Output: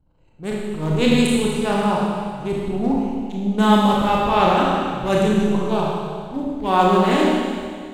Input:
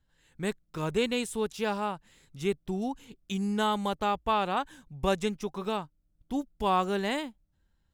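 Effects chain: Wiener smoothing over 25 samples; transient shaper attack -11 dB, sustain +9 dB; Schroeder reverb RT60 2 s, combs from 26 ms, DRR -4 dB; gain +8.5 dB

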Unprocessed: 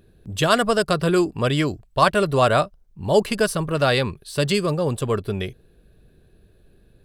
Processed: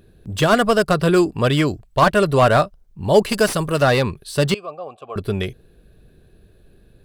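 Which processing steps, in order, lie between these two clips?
3.29–3.82 tone controls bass -2 dB, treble +9 dB; 4.54–5.16 vowel filter a; slew limiter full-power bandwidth 260 Hz; gain +3.5 dB

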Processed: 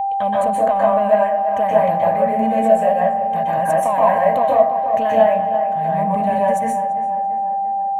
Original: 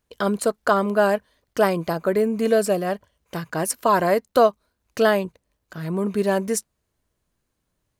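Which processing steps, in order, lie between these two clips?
fifteen-band EQ 100 Hz +10 dB, 250 Hz +5 dB, 630 Hz +8 dB, 1600 Hz +5 dB, 6300 Hz +7 dB; in parallel at -4.5 dB: soft clip -11 dBFS, distortion -11 dB; on the sum: tone controls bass -3 dB, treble -10 dB; on a send: darkening echo 0.34 s, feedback 59%, low-pass 3300 Hz, level -14.5 dB; on the sum: compressor 3:1, threshold -13 dBFS, peak gain reduction 8.5 dB; plate-style reverb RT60 0.54 s, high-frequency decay 0.5×, pre-delay 0.115 s, DRR -5 dB; whine 790 Hz -13 dBFS; fixed phaser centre 1400 Hz, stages 6; gain -4.5 dB

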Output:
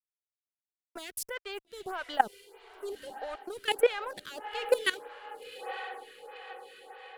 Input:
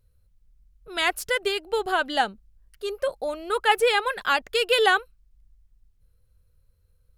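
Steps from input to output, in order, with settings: level quantiser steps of 18 dB; crossover distortion -47 dBFS; on a send: diffused feedback echo 0.94 s, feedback 55%, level -14 dB; on the sum: photocell phaser 1.6 Hz; gain +3 dB

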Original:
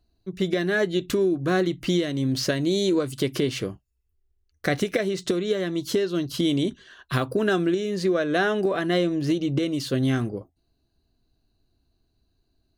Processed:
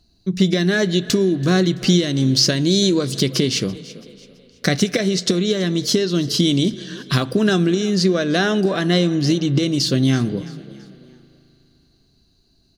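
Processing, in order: bell 5200 Hz +14 dB 1.3 oct; frequency-shifting echo 0.332 s, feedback 37%, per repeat +37 Hz, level -22 dB; in parallel at +2 dB: compressor, threshold -31 dBFS, peak gain reduction 17 dB; on the sum: bell 180 Hz +9.5 dB 1 oct; spring tank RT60 3.5 s, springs 37 ms, chirp 25 ms, DRR 18 dB; gain -1 dB

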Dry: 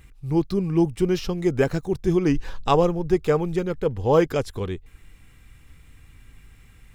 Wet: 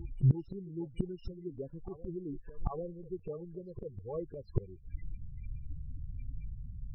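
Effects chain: loudest bins only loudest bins 8; flipped gate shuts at -24 dBFS, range -28 dB; reverse echo 0.792 s -15 dB; gain +8 dB

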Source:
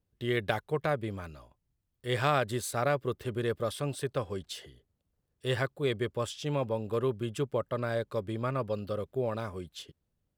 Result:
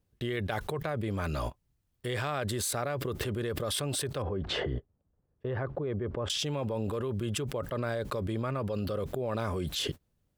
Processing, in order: gate -54 dBFS, range -28 dB; 4.22–6.3 LPF 1200 Hz 12 dB/oct; fast leveller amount 100%; gain -7.5 dB

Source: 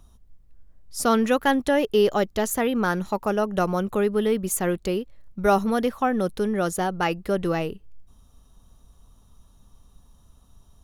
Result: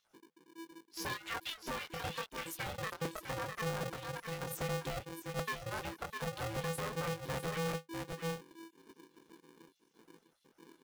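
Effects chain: random spectral dropouts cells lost 58%; bell 170 Hz +14.5 dB 0.29 oct; chorus 0.79 Hz, delay 19 ms, depth 5.6 ms; echo 0.652 s -9.5 dB; soft clip -18.5 dBFS, distortion -17 dB; graphic EQ 125/250/500/1000/4000/8000 Hz +9/-12/-10/+6/+5/-5 dB; limiter -25 dBFS, peak gain reduction 7.5 dB; crackling interface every 0.39 s, samples 128, repeat, from 0.71; polarity switched at an audio rate 330 Hz; gain -5 dB

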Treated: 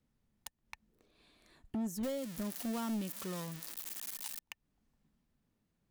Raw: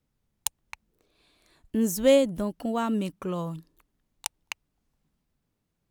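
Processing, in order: 2.03–4.39 switching spikes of -15.5 dBFS; high shelf 6200 Hz -4 dB; compressor 4:1, threshold -37 dBFS, peak gain reduction 18.5 dB; small resonant body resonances 220/1800 Hz, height 6 dB; hard clip -30.5 dBFS, distortion -15 dB; gain -2 dB

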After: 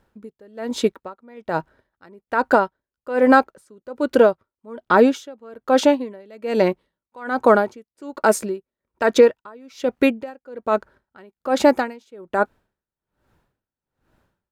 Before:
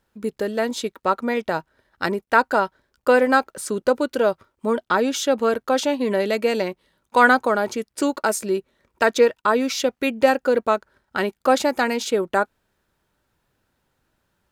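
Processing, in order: high shelf 2200 Hz -10 dB; limiter -11 dBFS, peak gain reduction 7 dB; dB-linear tremolo 1.2 Hz, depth 31 dB; gain +9 dB

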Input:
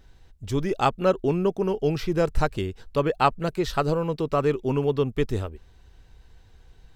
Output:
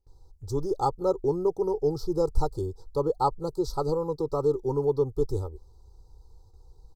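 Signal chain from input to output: elliptic band-stop 1100–4500 Hz, stop band 70 dB; gate with hold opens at -45 dBFS; comb 2.3 ms, depth 86%; gain -5 dB

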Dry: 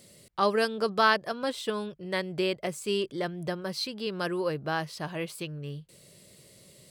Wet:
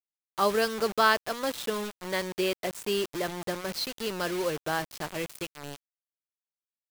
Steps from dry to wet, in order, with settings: HPF 170 Hz 12 dB/oct; bit-crush 6-bit

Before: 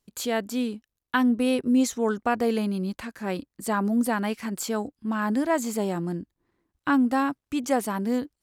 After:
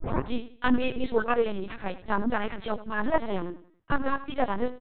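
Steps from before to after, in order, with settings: tape start at the beginning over 0.57 s; low shelf 240 Hz -9.5 dB; plain phase-vocoder stretch 0.57×; feedback echo 89 ms, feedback 36%, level -15 dB; LPC vocoder at 8 kHz pitch kept; gain +6 dB

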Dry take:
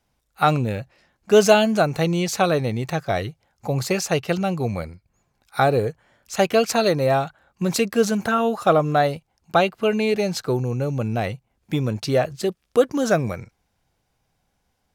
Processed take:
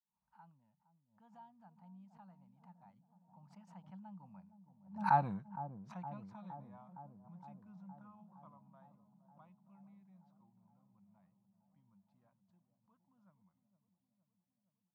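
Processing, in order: Doppler pass-by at 5.2, 30 m/s, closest 2.3 m; double band-pass 420 Hz, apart 2.3 oct; on a send: dark delay 0.464 s, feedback 69%, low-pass 660 Hz, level -10 dB; on the sum: backwards sustainer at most 130 dB/s; gain +1 dB

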